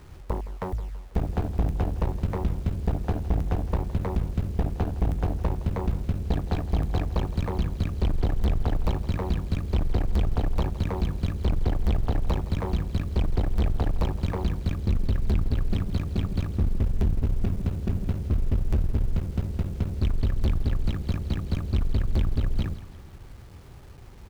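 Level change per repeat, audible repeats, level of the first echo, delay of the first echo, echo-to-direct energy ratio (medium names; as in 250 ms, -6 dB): -6.5 dB, 3, -16.0 dB, 164 ms, -15.0 dB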